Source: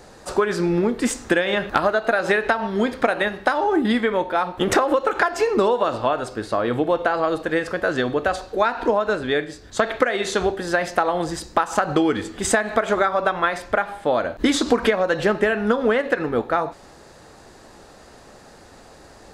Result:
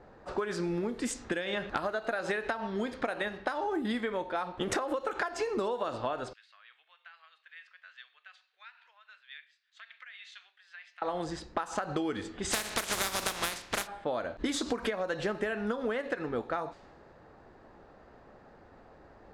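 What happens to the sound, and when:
0.96–1.55 dynamic EQ 940 Hz, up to -4 dB, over -34 dBFS, Q 0.79
6.33–11.02 ladder high-pass 2100 Hz, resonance 30%
12.51–13.86 spectral contrast lowered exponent 0.28
whole clip: low-pass opened by the level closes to 1600 Hz, open at -15.5 dBFS; compressor 2.5:1, threshold -22 dBFS; high shelf 5300 Hz +4.5 dB; gain -8.5 dB

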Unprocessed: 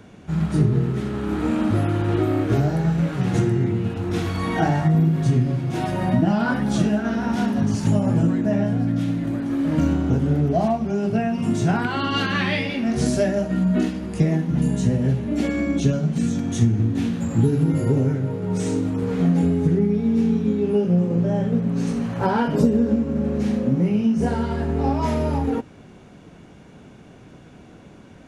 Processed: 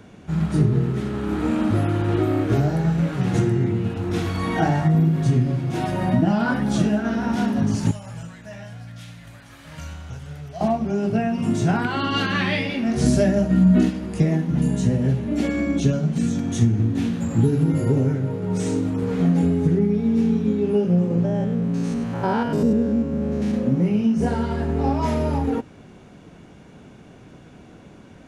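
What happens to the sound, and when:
7.91–10.61 passive tone stack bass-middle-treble 10-0-10
13.04–13.9 tone controls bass +7 dB, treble +1 dB
21.25–23.54 stepped spectrum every 0.1 s

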